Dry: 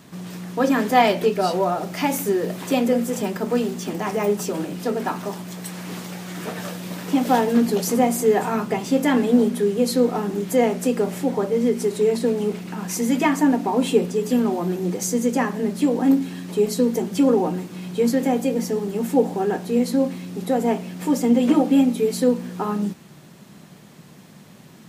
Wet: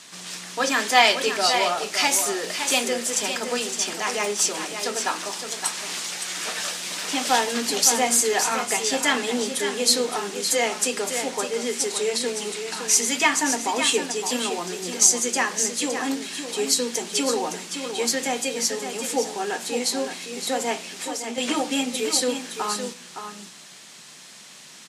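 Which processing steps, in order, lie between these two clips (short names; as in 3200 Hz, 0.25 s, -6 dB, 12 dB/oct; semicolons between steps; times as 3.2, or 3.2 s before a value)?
weighting filter ITU-R 468; 20.92–21.38 compressor 3:1, threshold -32 dBFS, peak gain reduction 9.5 dB; echo 0.564 s -8 dB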